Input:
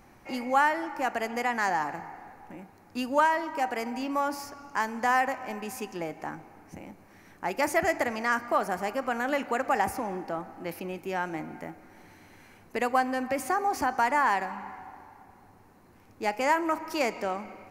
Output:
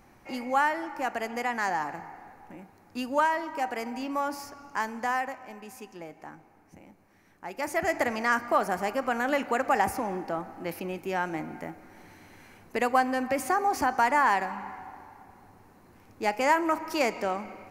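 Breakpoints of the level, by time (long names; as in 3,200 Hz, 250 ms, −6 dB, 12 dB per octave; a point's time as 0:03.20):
0:04.88 −1.5 dB
0:05.48 −8 dB
0:07.48 −8 dB
0:08.04 +1.5 dB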